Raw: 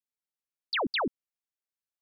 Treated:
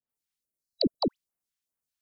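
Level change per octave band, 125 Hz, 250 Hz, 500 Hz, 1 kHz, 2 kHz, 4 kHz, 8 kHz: +6.5 dB, +5.5 dB, +3.0 dB, -5.5 dB, under -25 dB, 0.0 dB, no reading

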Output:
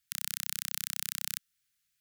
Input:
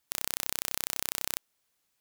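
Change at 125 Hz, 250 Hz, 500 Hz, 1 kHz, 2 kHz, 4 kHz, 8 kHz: -2.5 dB, -10.0 dB, under -40 dB, -12.5 dB, -3.5 dB, -2.0 dB, -2.0 dB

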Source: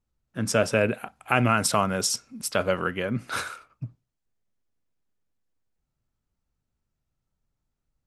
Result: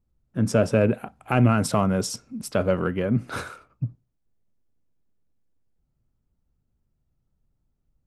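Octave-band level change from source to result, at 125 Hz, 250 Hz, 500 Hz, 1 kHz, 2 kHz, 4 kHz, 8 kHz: +6.5 dB, +6.0 dB, +2.0 dB, -2.0 dB, -4.5 dB, -6.0 dB, -6.0 dB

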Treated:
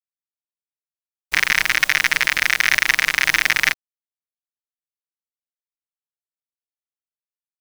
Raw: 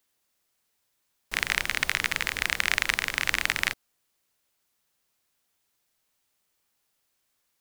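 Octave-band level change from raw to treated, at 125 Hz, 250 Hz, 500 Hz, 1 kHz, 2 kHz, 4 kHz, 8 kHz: +3.0 dB, +4.5 dB, +4.0 dB, +8.0 dB, +10.5 dB, +8.0 dB, +8.5 dB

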